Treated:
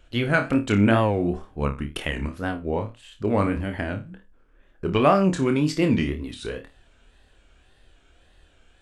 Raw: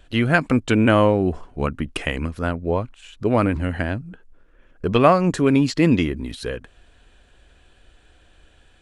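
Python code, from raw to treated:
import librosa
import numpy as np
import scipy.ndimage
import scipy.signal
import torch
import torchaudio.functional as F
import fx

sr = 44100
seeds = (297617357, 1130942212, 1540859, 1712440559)

y = fx.room_flutter(x, sr, wall_m=4.7, rt60_s=0.26)
y = fx.wow_flutter(y, sr, seeds[0], rate_hz=2.1, depth_cents=130.0)
y = F.gain(torch.from_numpy(y), -4.5).numpy()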